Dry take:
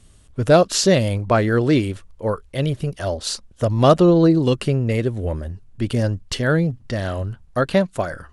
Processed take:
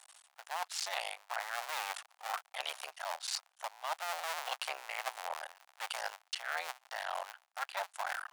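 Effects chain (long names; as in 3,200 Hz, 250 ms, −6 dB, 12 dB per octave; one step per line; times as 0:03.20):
sub-harmonics by changed cycles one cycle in 2, muted
elliptic high-pass filter 750 Hz, stop band 70 dB
reversed playback
downward compressor 12 to 1, threshold −39 dBFS, peak gain reduction 24.5 dB
reversed playback
level +4.5 dB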